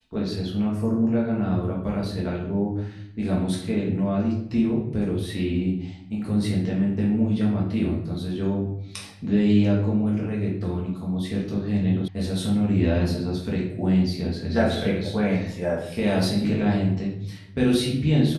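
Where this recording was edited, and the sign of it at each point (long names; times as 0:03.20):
0:12.08: cut off before it has died away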